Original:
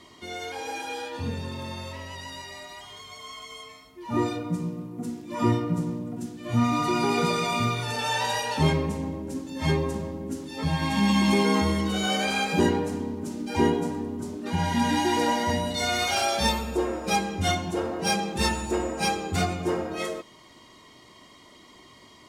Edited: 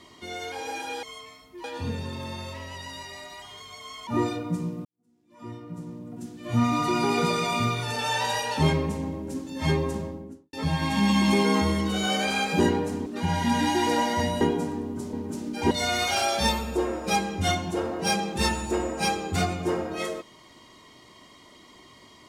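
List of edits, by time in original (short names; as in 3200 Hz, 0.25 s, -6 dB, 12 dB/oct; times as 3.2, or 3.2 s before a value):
3.46–4.07 move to 1.03
4.85–6.57 fade in quadratic
9.97–10.53 studio fade out
13.06–13.64 swap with 14.36–15.71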